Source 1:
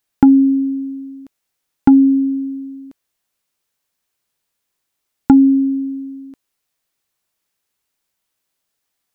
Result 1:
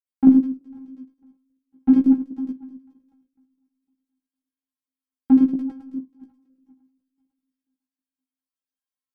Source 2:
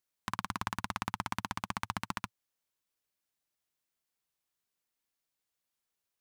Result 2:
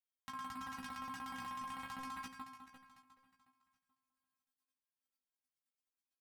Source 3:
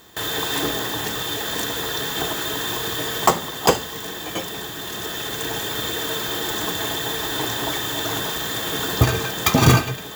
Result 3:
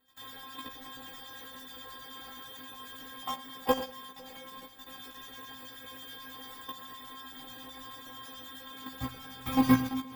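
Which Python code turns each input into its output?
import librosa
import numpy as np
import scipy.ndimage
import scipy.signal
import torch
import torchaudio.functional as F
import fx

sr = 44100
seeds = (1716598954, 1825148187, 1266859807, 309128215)

p1 = fx.reverse_delay_fb(x, sr, ms=250, feedback_pct=51, wet_db=-6)
p2 = fx.highpass(p1, sr, hz=45.0, slope=6)
p3 = fx.low_shelf(p2, sr, hz=130.0, db=7.0)
p4 = p3 + fx.echo_single(p3, sr, ms=87, db=-12.5, dry=0)
p5 = fx.filter_lfo_notch(p4, sr, shape='square', hz=9.3, low_hz=400.0, high_hz=6100.0, q=0.7)
p6 = fx.dynamic_eq(p5, sr, hz=6800.0, q=0.99, threshold_db=-44.0, ratio=4.0, max_db=-6)
p7 = fx.stiff_resonator(p6, sr, f0_hz=260.0, decay_s=0.29, stiffness=0.002)
p8 = fx.level_steps(p7, sr, step_db=9)
p9 = fx.doubler(p8, sr, ms=16.0, db=-2.5)
p10 = fx.upward_expand(p9, sr, threshold_db=-41.0, expansion=1.5)
y = p10 * librosa.db_to_amplitude(6.0)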